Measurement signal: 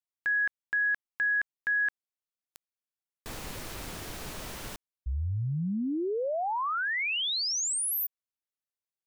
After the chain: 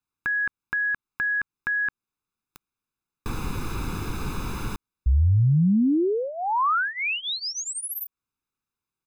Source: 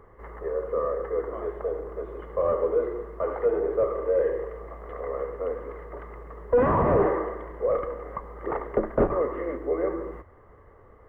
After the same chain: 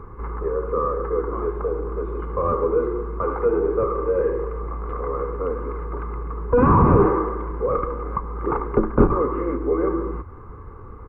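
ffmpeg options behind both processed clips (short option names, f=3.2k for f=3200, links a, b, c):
-filter_complex "[0:a]aecho=1:1:0.8:0.83,asplit=2[a][b];[b]acompressor=threshold=-39dB:ratio=6:attack=11:release=421:knee=1:detection=peak,volume=-0.5dB[c];[a][c]amix=inputs=2:normalize=0,highshelf=f=2k:g=-12,volume=5.5dB"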